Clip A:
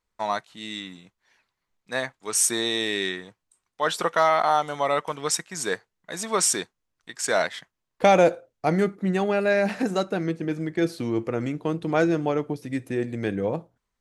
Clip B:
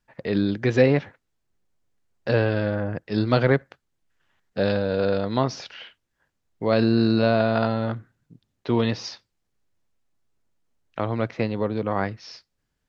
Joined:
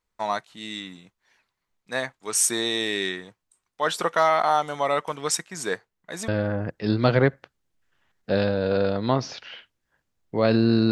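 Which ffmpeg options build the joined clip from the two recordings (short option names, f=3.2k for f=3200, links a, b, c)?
-filter_complex "[0:a]asettb=1/sr,asplit=3[a][b][c];[a]atrim=end=5.484[d];[b]atrim=start=5.48:end=6.28,asetpts=PTS-STARTPTS,afade=t=in:d=0.004:c=qsin,afade=t=out:st=0.796:d=0.004:c=qsin,equalizer=f=8.7k:w=0.34:g=-3.5[e];[c]atrim=start=6.276[f];[d][e]acrossfade=d=0.004:c1=hsin:c2=qsin[g];[g][f]acrossfade=d=0.004:c1=qsin:c2=hsin,apad=whole_dur=10.91,atrim=end=10.91,atrim=end=6.282[h];[1:a]atrim=start=2.558:end=7.19[i];[h][i]acrossfade=d=0.004:c1=hsin:c2=hsin"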